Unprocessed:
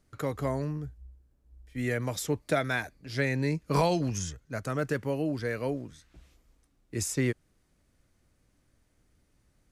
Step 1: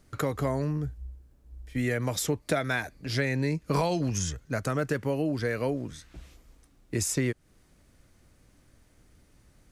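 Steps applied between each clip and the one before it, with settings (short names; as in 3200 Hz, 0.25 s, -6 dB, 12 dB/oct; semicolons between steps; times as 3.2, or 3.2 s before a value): compressor 2.5:1, threshold -36 dBFS, peak gain reduction 10.5 dB; gain +8.5 dB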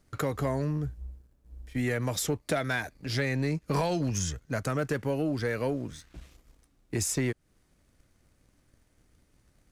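sample leveller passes 1; gain -4 dB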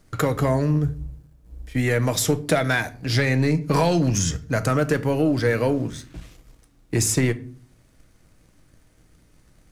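shoebox room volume 440 m³, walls furnished, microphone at 0.58 m; gain +8 dB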